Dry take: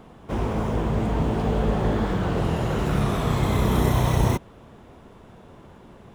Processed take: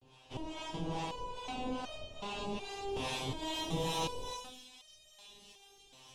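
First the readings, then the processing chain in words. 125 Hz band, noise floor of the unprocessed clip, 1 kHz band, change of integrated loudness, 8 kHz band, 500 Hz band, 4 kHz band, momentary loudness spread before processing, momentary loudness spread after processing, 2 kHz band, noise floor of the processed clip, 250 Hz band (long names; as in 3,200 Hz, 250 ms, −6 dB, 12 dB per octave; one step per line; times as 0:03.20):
−22.5 dB, −48 dBFS, −11.0 dB, −15.5 dB, −6.5 dB, −14.5 dB, −2.5 dB, 5 LU, 20 LU, −11.5 dB, −62 dBFS, −17.5 dB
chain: ceiling on every frequency bin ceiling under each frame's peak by 26 dB
notch filter 860 Hz, Q 24
frequency shifter −210 Hz
high-frequency loss of the air 75 metres
reverb whose tail is shaped and stops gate 240 ms falling, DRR 1.5 dB
pitch vibrato 0.36 Hz 58 cents
two-band tremolo in antiphase 2.4 Hz, depth 70%, crossover 590 Hz
delay with a high-pass on its return 588 ms, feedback 71%, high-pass 2,800 Hz, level −12.5 dB
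gain into a clipping stage and back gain 14.5 dB
flat-topped bell 1,600 Hz −14.5 dB 1.1 octaves
step-sequenced resonator 2.7 Hz 130–620 Hz
level +1 dB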